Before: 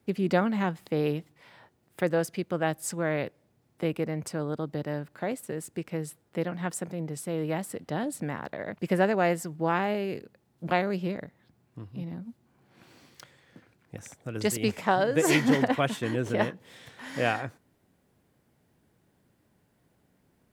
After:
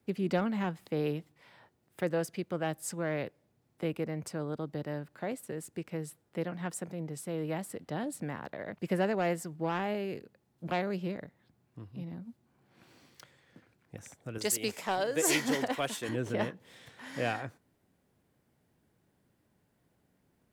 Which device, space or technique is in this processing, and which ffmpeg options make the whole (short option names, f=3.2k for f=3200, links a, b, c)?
one-band saturation: -filter_complex "[0:a]asettb=1/sr,asplit=3[a][b][c];[a]atrim=end=14.384[d];[b]atrim=start=14.38:end=16.09,asetpts=PTS-STARTPTS,afade=t=in:d=0.004:c=qsin,afade=t=out:st=1.706:d=0.004:c=qsin,bass=f=250:g=-10,treble=f=4k:g=8[e];[c]atrim=start=16.086[f];[d][e]acrossfade=d=0.004:c1=hsin:c2=qsin[g];[g][f]acrossfade=d=0.004:c1=qsin:c2=hsin,acrossover=split=520|2300[h][i][j];[i]asoftclip=type=tanh:threshold=-24dB[k];[h][k][j]amix=inputs=3:normalize=0,volume=-4.5dB"